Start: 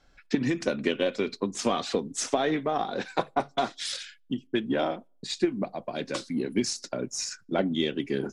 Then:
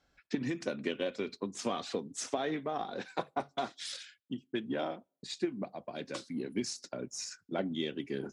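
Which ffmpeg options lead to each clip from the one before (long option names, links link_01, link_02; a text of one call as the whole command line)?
ffmpeg -i in.wav -af "highpass=50,volume=-8dB" out.wav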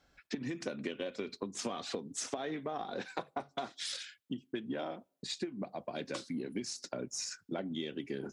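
ffmpeg -i in.wav -af "acompressor=threshold=-38dB:ratio=6,volume=3.5dB" out.wav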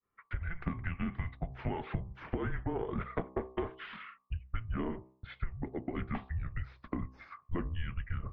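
ffmpeg -i in.wav -af "agate=range=-33dB:threshold=-58dB:ratio=3:detection=peak,highpass=frequency=220:width_type=q:width=0.5412,highpass=frequency=220:width_type=q:width=1.307,lowpass=frequency=2600:width_type=q:width=0.5176,lowpass=frequency=2600:width_type=q:width=0.7071,lowpass=frequency=2600:width_type=q:width=1.932,afreqshift=-330,bandreject=frequency=63.96:width_type=h:width=4,bandreject=frequency=127.92:width_type=h:width=4,bandreject=frequency=191.88:width_type=h:width=4,bandreject=frequency=255.84:width_type=h:width=4,bandreject=frequency=319.8:width_type=h:width=4,bandreject=frequency=383.76:width_type=h:width=4,bandreject=frequency=447.72:width_type=h:width=4,bandreject=frequency=511.68:width_type=h:width=4,bandreject=frequency=575.64:width_type=h:width=4,bandreject=frequency=639.6:width_type=h:width=4,bandreject=frequency=703.56:width_type=h:width=4,bandreject=frequency=767.52:width_type=h:width=4,bandreject=frequency=831.48:width_type=h:width=4,bandreject=frequency=895.44:width_type=h:width=4,bandreject=frequency=959.4:width_type=h:width=4,bandreject=frequency=1023.36:width_type=h:width=4,bandreject=frequency=1087.32:width_type=h:width=4,bandreject=frequency=1151.28:width_type=h:width=4,bandreject=frequency=1215.24:width_type=h:width=4,volume=4.5dB" out.wav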